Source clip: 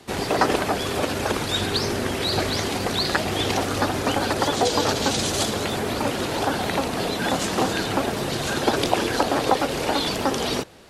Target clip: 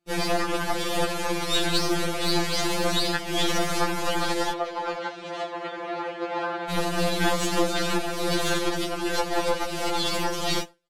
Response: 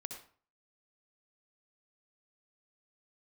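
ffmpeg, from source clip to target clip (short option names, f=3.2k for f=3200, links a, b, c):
-filter_complex "[0:a]alimiter=limit=-13dB:level=0:latency=1:release=298,acontrast=90,aeval=exprs='(tanh(3.55*val(0)+0.8)-tanh(0.8))/3.55':c=same,asettb=1/sr,asplit=3[a][b][c];[a]atrim=end=4.524[d];[b]atrim=start=4.52:end=6.7,asetpts=PTS-STARTPTS,afade=t=in:d=0.004:c=qsin,afade=t=out:st=2.176:d=0.004:c=qsin,highpass=350,lowpass=2k[e];[c]atrim=start=6.696[f];[d][e]acrossfade=d=0.004:c1=hsin:c2=qsin[g];[g][f]acrossfade=d=0.004:c1=qsin:c2=hsin,aecho=1:1:448:0.0708,agate=range=-33dB:threshold=-23dB:ratio=3:detection=peak,afftfilt=real='re*2.83*eq(mod(b,8),0)':imag='im*2.83*eq(mod(b,8),0)':win_size=2048:overlap=0.75"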